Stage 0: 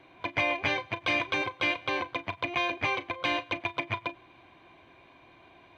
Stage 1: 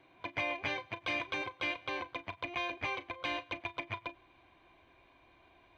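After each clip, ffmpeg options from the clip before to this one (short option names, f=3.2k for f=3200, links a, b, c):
-af "asubboost=boost=5:cutoff=59,volume=-7.5dB"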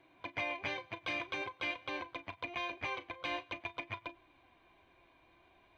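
-af "flanger=delay=2.9:depth=3.5:regen=77:speed=0.48:shape=triangular,volume=2dB"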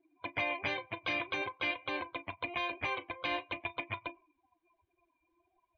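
-af "afftdn=nr=27:nf=-54,volume=3.5dB"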